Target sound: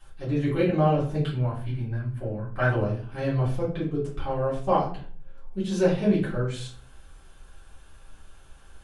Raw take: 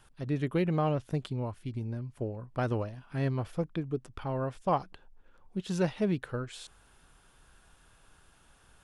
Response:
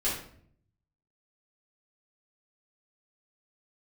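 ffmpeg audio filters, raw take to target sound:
-filter_complex "[0:a]asettb=1/sr,asplit=3[s0][s1][s2];[s0]atrim=end=1.234[s3];[s1]atrim=start=1.23:end=2.72,asetpts=PTS-STARTPTS,afade=t=in:d=0.004:c=qsin,afade=t=out:st=1.486:d=0.004:c=qsin,equalizer=f=400:t=o:w=0.67:g=-8,equalizer=f=1600:t=o:w=0.67:g=10,equalizer=f=6300:t=o:w=0.67:g=-9[s4];[s2]atrim=start=2.716[s5];[s3][s4]acrossfade=d=0.004:c1=hsin:c2=qsin[s6];[s6][s5]acrossfade=d=0.004:c1=qsin:c2=hsin[s7];[1:a]atrim=start_sample=2205,asetrate=61740,aresample=44100[s8];[s7][s8]afir=irnorm=-1:irlink=0"

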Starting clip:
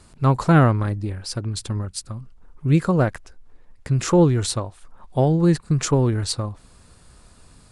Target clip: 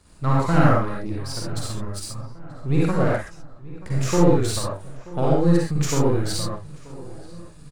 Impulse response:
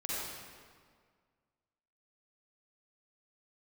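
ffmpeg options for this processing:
-filter_complex "[0:a]aeval=exprs='if(lt(val(0),0),0.447*val(0),val(0))':c=same,asplit=2[s0][s1];[s1]adelay=932,lowpass=f=2300:p=1,volume=0.112,asplit=2[s2][s3];[s3]adelay=932,lowpass=f=2300:p=1,volume=0.52,asplit=2[s4][s5];[s5]adelay=932,lowpass=f=2300:p=1,volume=0.52,asplit=2[s6][s7];[s7]adelay=932,lowpass=f=2300:p=1,volume=0.52[s8];[s0][s2][s4][s6][s8]amix=inputs=5:normalize=0[s9];[1:a]atrim=start_sample=2205,afade=t=out:st=0.19:d=0.01,atrim=end_sample=8820[s10];[s9][s10]afir=irnorm=-1:irlink=0"

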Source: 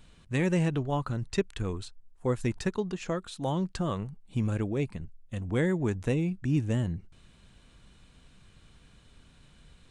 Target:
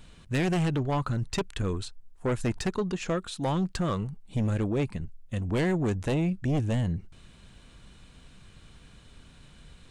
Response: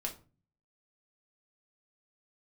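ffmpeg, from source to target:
-af "aeval=exprs='0.188*(cos(1*acos(clip(val(0)/0.188,-1,1)))-cos(1*PI/2))+0.0841*(cos(5*acos(clip(val(0)/0.188,-1,1)))-cos(5*PI/2))':c=same,volume=0.531"

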